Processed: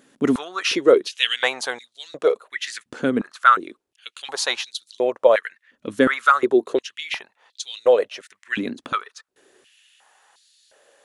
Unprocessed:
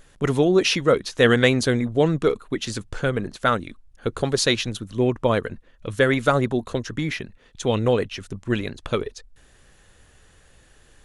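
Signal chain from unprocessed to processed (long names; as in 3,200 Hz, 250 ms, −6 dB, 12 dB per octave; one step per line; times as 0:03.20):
high-pass on a step sequencer 2.8 Hz 250–4,200 Hz
level −2 dB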